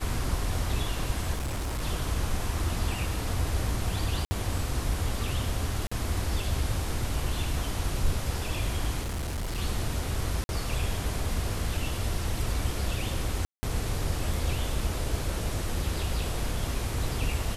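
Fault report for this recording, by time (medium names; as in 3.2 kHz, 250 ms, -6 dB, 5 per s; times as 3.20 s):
1.33–1.82 s: clipped -27.5 dBFS
4.25–4.31 s: dropout 60 ms
5.87–5.92 s: dropout 45 ms
9.02–9.59 s: clipped -28.5 dBFS
10.44–10.49 s: dropout 51 ms
13.45–13.63 s: dropout 180 ms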